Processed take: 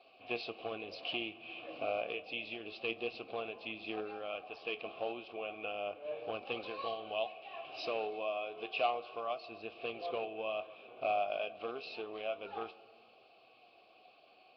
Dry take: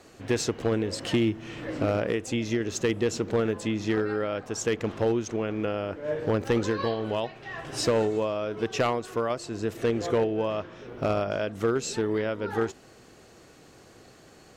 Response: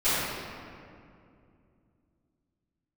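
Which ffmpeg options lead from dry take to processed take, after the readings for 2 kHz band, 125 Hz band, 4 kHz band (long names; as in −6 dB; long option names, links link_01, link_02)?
−6.5 dB, −29.0 dB, −6.5 dB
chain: -filter_complex "[0:a]asplit=3[link_01][link_02][link_03];[link_01]bandpass=frequency=730:width_type=q:width=8,volume=0dB[link_04];[link_02]bandpass=frequency=1090:width_type=q:width=8,volume=-6dB[link_05];[link_03]bandpass=frequency=2440:width_type=q:width=8,volume=-9dB[link_06];[link_04][link_05][link_06]amix=inputs=3:normalize=0,highshelf=frequency=2100:width_type=q:width=1.5:gain=10,flanger=delay=7.4:depth=5.1:regen=59:speed=0.3:shape=triangular,asplit=2[link_07][link_08];[1:a]atrim=start_sample=2205[link_09];[link_08][link_09]afir=irnorm=-1:irlink=0,volume=-32.5dB[link_10];[link_07][link_10]amix=inputs=2:normalize=0,volume=5dB" -ar 11025 -c:a nellymoser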